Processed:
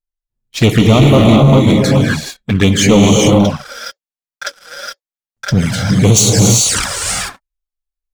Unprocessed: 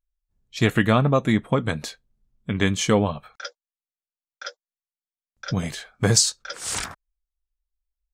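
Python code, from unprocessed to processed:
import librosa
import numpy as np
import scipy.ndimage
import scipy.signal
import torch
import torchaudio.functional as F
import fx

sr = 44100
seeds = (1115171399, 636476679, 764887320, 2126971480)

y = fx.rev_gated(x, sr, seeds[0], gate_ms=460, shape='rising', drr_db=0.0)
y = fx.leveller(y, sr, passes=3)
y = fx.env_flanger(y, sr, rest_ms=8.8, full_db=-9.0)
y = y * librosa.db_to_amplitude(3.5)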